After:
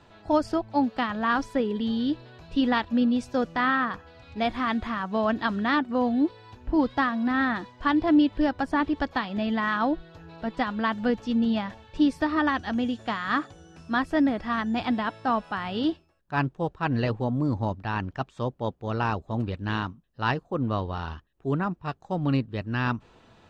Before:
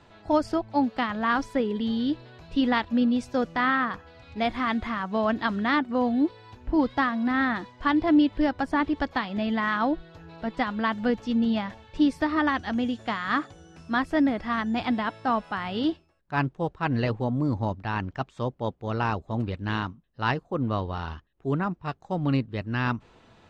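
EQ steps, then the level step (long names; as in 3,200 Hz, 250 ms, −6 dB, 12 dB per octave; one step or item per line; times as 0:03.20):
notch filter 2,100 Hz, Q 15
0.0 dB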